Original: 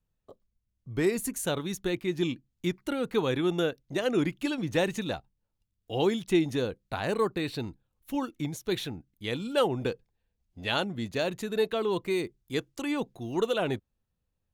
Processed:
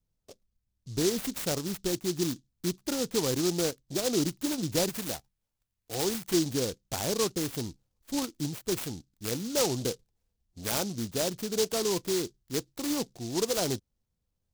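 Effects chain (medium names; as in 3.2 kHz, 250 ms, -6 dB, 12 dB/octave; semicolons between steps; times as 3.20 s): 4.89–6.34 s: tilt shelf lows -5 dB, about 1.3 kHz; in parallel at -2.5 dB: peak limiter -20 dBFS, peak gain reduction 7.5 dB; on the sum: delay time shaken by noise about 5.1 kHz, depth 0.16 ms; trim -5 dB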